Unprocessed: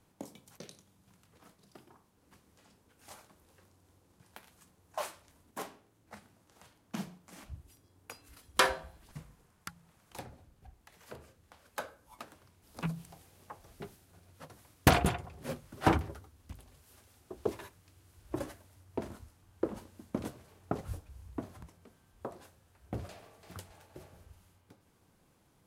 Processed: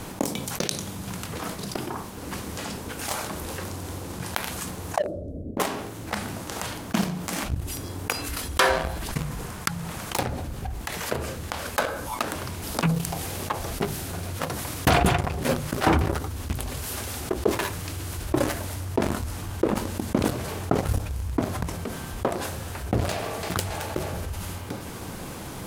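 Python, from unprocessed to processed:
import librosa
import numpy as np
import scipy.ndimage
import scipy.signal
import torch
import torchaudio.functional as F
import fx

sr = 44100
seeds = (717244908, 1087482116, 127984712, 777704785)

y = fx.ellip_lowpass(x, sr, hz=600.0, order=4, stop_db=40, at=(4.98, 5.6))
y = fx.hum_notches(y, sr, base_hz=50, count=3)
y = fx.leveller(y, sr, passes=2)
y = fx.env_flatten(y, sr, amount_pct=70)
y = y * 10.0 ** (-4.0 / 20.0)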